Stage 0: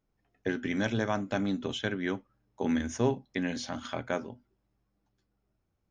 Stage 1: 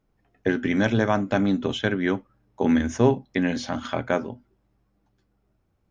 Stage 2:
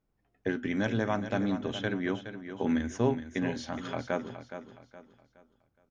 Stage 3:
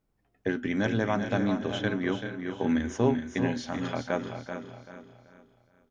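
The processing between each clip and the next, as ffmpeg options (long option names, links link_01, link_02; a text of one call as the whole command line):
ffmpeg -i in.wav -af "highshelf=frequency=3800:gain=-8,volume=8.5dB" out.wav
ffmpeg -i in.wav -af "aecho=1:1:418|836|1254|1672:0.299|0.104|0.0366|0.0128,volume=-8dB" out.wav
ffmpeg -i in.wav -af "aecho=1:1:385|770|1155:0.376|0.105|0.0295,volume=2dB" out.wav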